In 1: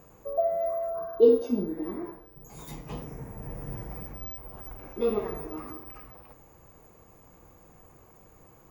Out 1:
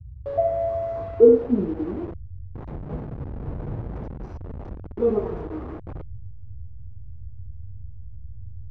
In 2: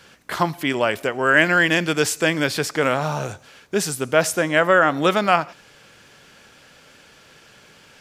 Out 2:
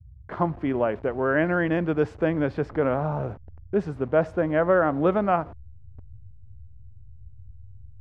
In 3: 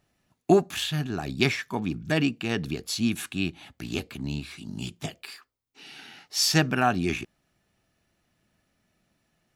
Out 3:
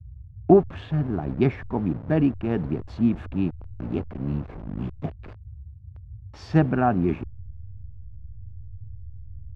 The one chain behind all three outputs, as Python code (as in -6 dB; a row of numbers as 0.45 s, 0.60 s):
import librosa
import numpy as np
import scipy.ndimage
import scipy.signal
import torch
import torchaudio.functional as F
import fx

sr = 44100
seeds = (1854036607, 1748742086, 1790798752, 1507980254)

y = fx.delta_hold(x, sr, step_db=-34.5)
y = scipy.signal.sosfilt(scipy.signal.bessel(2, 750.0, 'lowpass', norm='mag', fs=sr, output='sos'), y)
y = fx.dmg_noise_band(y, sr, seeds[0], low_hz=48.0, high_hz=110.0, level_db=-46.0)
y = y * 10.0 ** (-26 / 20.0) / np.sqrt(np.mean(np.square(y)))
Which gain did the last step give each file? +6.5 dB, -1.0 dB, +5.0 dB